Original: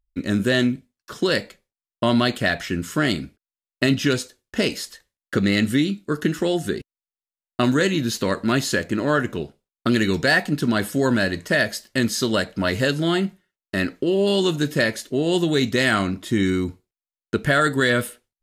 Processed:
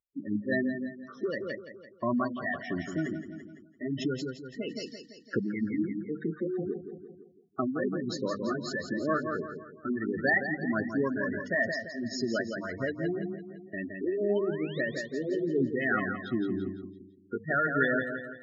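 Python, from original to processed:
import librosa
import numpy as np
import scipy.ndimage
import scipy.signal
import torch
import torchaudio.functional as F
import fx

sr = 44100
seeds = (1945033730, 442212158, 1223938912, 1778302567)

y = fx.pitch_ramps(x, sr, semitones=1.0, every_ms=254)
y = scipy.signal.sosfilt(scipy.signal.butter(4, 6600.0, 'lowpass', fs=sr, output='sos'), y)
y = fx.hum_notches(y, sr, base_hz=50, count=4)
y = fx.spec_gate(y, sr, threshold_db=-10, keep='strong')
y = scipy.signal.sosfilt(scipy.signal.butter(2, 110.0, 'highpass', fs=sr, output='sos'), y)
y = fx.peak_eq(y, sr, hz=1200.0, db=9.5, octaves=0.42)
y = fx.spec_paint(y, sr, seeds[0], shape='rise', start_s=14.29, length_s=0.52, low_hz=690.0, high_hz=4200.0, level_db=-40.0)
y = fx.echo_feedback(y, sr, ms=169, feedback_pct=46, wet_db=-7)
y = fx.am_noise(y, sr, seeds[1], hz=5.7, depth_pct=65)
y = F.gain(torch.from_numpy(y), -5.0).numpy()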